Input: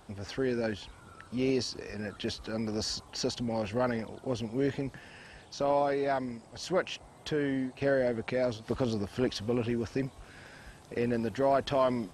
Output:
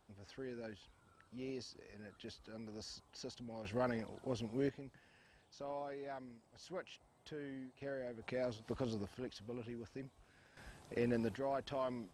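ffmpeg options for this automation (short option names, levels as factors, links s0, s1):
-af "asetnsamples=n=441:p=0,asendcmd='3.65 volume volume -7.5dB;4.69 volume volume -17dB;8.22 volume volume -10dB;9.14 volume volume -16.5dB;10.57 volume volume -6dB;11.36 volume volume -13dB',volume=0.15"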